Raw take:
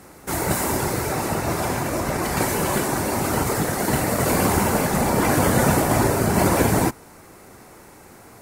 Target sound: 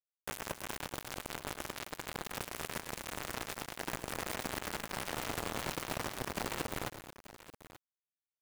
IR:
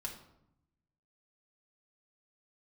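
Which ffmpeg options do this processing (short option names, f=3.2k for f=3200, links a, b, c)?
-af "aemphasis=mode=reproduction:type=50kf,bandreject=f=50:t=h:w=6,bandreject=f=100:t=h:w=6,bandreject=f=150:t=h:w=6,bandreject=f=200:t=h:w=6,bandreject=f=250:t=h:w=6,adynamicequalizer=threshold=0.01:dfrequency=190:dqfactor=5.6:tfrequency=190:tqfactor=5.6:attack=5:release=100:ratio=0.375:range=2.5:mode=cutabove:tftype=bell,acompressor=threshold=-37dB:ratio=4,acrusher=bits=4:mix=0:aa=0.000001,aecho=1:1:108|223|884:0.251|0.251|0.158,volume=-1.5dB"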